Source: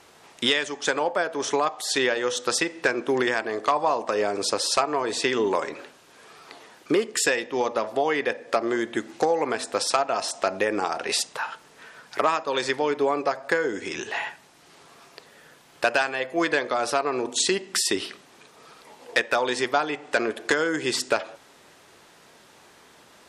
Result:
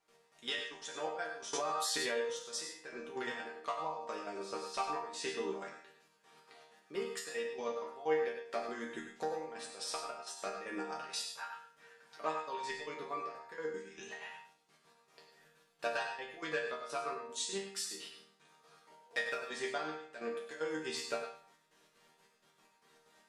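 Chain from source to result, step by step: step gate ".x..x.x..xx.xx" 190 bpm -12 dB; resonator bank D#3 major, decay 0.44 s; on a send at -6.5 dB: reverb RT60 0.20 s, pre-delay 87 ms; 1.53–2.14 on the sum: fast leveller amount 100%; gain +3.5 dB

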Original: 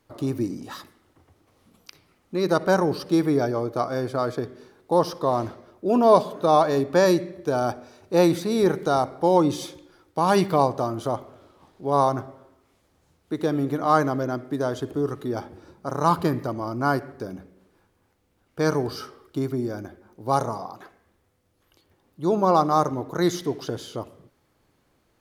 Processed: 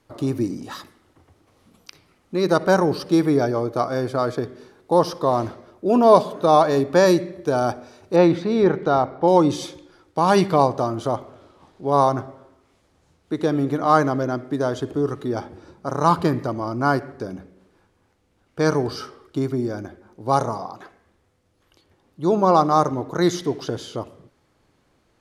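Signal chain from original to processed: LPF 12000 Hz 12 dB/oct, from 8.16 s 3100 Hz, from 9.28 s 9300 Hz; gain +3 dB

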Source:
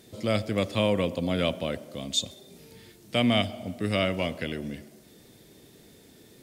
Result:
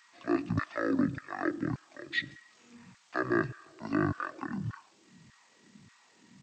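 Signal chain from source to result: LFO high-pass saw down 1.7 Hz 210–2800 Hz; pitch shift -11 st; gain -4.5 dB

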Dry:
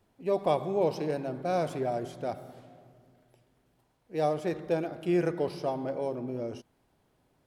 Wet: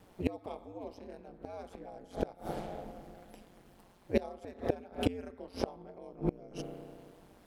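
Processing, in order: spring tank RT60 1.9 s, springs 34 ms, chirp 55 ms, DRR 17 dB; ring modulator 92 Hz; flipped gate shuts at -28 dBFS, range -27 dB; gain +13 dB

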